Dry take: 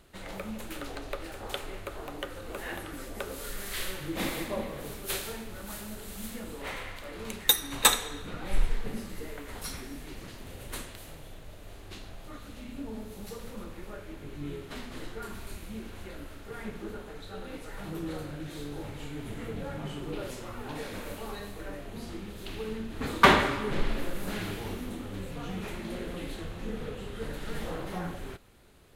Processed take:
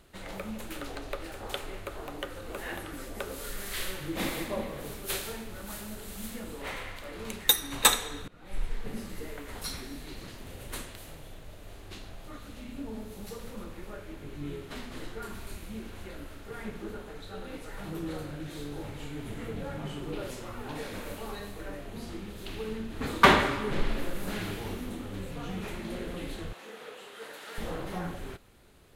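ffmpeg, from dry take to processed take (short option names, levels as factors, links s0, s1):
-filter_complex "[0:a]asettb=1/sr,asplit=3[s0][s1][s2];[s0]atrim=end=9.644[s3];[s1]atrim=start=9.64:end=10.29,asetpts=PTS-STARTPTS,afade=t=in:d=0.004:c=qsin,afade=t=out:st=0.646:d=0.004:c=qsin,equalizer=f=4100:t=o:w=0.28:g=7[s4];[s2]atrim=start=10.286[s5];[s3][s4]acrossfade=d=0.004:c1=hsin:c2=qsin[s6];[s6][s5]acrossfade=d=0.004:c1=qsin:c2=hsin,asettb=1/sr,asplit=3[s7][s8][s9];[s7]atrim=end=26.534[s10];[s8]atrim=start=26.53:end=27.58,asetpts=PTS-STARTPTS,afade=t=in:d=0.004:c=qsin,afade=t=out:st=1.046:d=0.004:c=qsin,highpass=610[s11];[s9]atrim=start=27.576[s12];[s10][s11]acrossfade=d=0.004:c1=hsin:c2=qsin[s13];[s13][s12]acrossfade=d=0.004:c1=qsin:c2=hsin,asplit=2[s14][s15];[s14]atrim=end=8.28,asetpts=PTS-STARTPTS,afade=t=out:st=8.276:d=0.004:c=hsin:silence=0.0668344[s16];[s15]atrim=start=8.28,asetpts=PTS-STARTPTS,afade=t=in:d=0.78:silence=0.0668344[s17];[s16][s17]concat=n=2:v=0:a=1"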